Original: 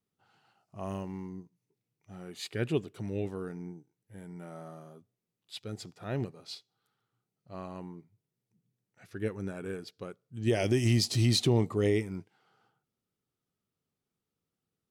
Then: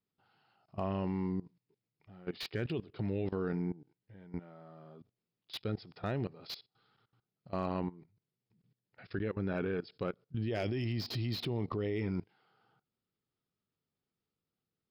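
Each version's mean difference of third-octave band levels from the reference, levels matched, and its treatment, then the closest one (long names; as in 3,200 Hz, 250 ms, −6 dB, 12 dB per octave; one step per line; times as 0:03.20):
6.5 dB: in parallel at −0.5 dB: downward compressor 4 to 1, threshold −39 dBFS, peak gain reduction 15 dB
on the sum: linear-phase brick-wall low-pass 5,400 Hz
output level in coarse steps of 19 dB
slew-rate limiting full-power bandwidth 30 Hz
level +4 dB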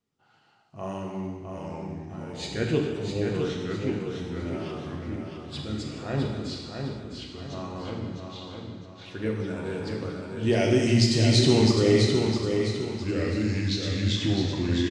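8.5 dB: low-pass filter 7,800 Hz 24 dB per octave
delay with pitch and tempo change per echo 612 ms, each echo −3 semitones, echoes 3, each echo −6 dB
on a send: repeating echo 658 ms, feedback 39%, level −5.5 dB
on the sum: reverb whose tail is shaped and stops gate 490 ms falling, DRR −0.5 dB
level +2.5 dB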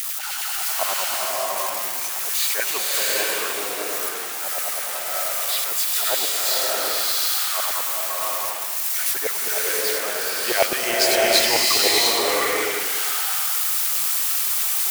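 21.0 dB: spike at every zero crossing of −25.5 dBFS
parametric band 690 Hz +3.5 dB 2.2 octaves
auto-filter high-pass saw down 9.6 Hz 610–2,100 Hz
slow-attack reverb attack 700 ms, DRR −4 dB
level +7.5 dB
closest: first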